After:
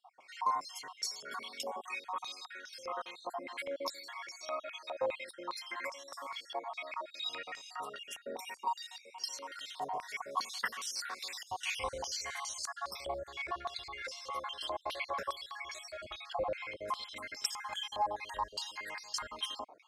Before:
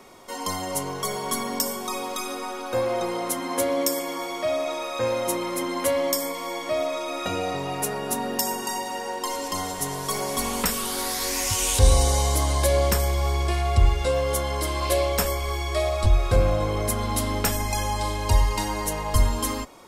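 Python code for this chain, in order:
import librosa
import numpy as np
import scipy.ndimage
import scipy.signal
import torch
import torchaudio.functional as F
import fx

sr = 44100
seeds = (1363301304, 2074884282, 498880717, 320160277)

y = fx.spec_dropout(x, sr, seeds[0], share_pct=49)
y = fx.filter_held_bandpass(y, sr, hz=4.9, low_hz=770.0, high_hz=5400.0)
y = y * librosa.db_to_amplitude(2.5)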